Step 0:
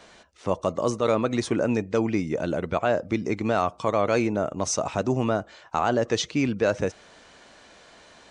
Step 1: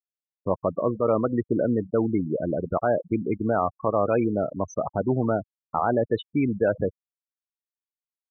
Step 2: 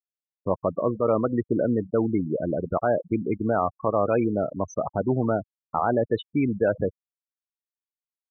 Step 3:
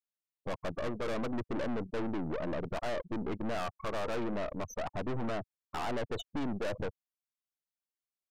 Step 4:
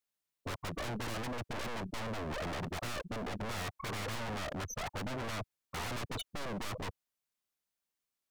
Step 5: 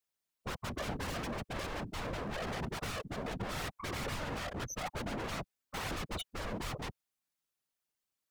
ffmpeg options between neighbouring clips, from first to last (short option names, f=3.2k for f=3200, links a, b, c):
-af "aemphasis=mode=reproduction:type=75fm,afftfilt=real='re*gte(hypot(re,im),0.0891)':imag='im*gte(hypot(re,im),0.0891)':win_size=1024:overlap=0.75"
-af anull
-af "aeval=exprs='(tanh(44.7*val(0)+0.7)-tanh(0.7))/44.7':c=same"
-af "aeval=exprs='0.015*(abs(mod(val(0)/0.015+3,4)-2)-1)':c=same,volume=5dB"
-af "afftfilt=real='hypot(re,im)*cos(2*PI*random(0))':imag='hypot(re,im)*sin(2*PI*random(1))':win_size=512:overlap=0.75,volume=6dB"